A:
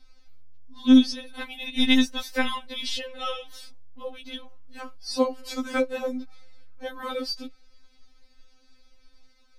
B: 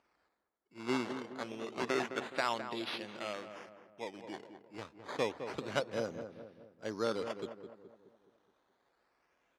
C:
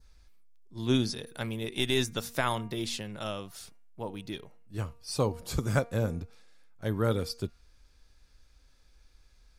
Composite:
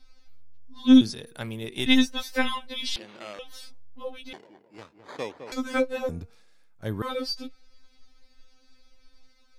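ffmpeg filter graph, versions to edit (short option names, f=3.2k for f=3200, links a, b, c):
-filter_complex "[2:a]asplit=2[a][b];[1:a]asplit=2[c][d];[0:a]asplit=5[e][f][g][h][i];[e]atrim=end=1.012[j];[a]atrim=start=1.008:end=1.862[k];[f]atrim=start=1.858:end=2.962[l];[c]atrim=start=2.958:end=3.392[m];[g]atrim=start=3.388:end=4.332[n];[d]atrim=start=4.328:end=5.522[o];[h]atrim=start=5.518:end=6.092[p];[b]atrim=start=6.088:end=7.022[q];[i]atrim=start=7.018[r];[j][k]acrossfade=d=0.004:c1=hsin:c2=hsin[s];[s][l]acrossfade=d=0.004:c1=hsin:c2=hsin[t];[t][m]acrossfade=d=0.004:c1=hsin:c2=hsin[u];[u][n]acrossfade=d=0.004:c1=hsin:c2=hsin[v];[v][o]acrossfade=d=0.004:c1=hsin:c2=hsin[w];[w][p]acrossfade=d=0.004:c1=hsin:c2=hsin[x];[x][q]acrossfade=d=0.004:c1=hsin:c2=hsin[y];[y][r]acrossfade=d=0.004:c1=hsin:c2=hsin"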